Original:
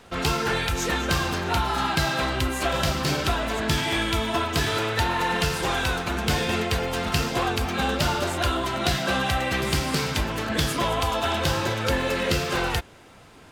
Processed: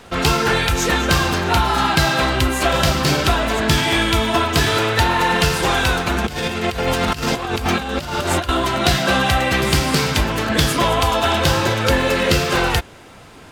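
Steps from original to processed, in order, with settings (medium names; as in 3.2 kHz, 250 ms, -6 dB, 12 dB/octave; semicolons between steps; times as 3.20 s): 6.24–8.49 s: compressor with a negative ratio -28 dBFS, ratio -0.5; trim +7.5 dB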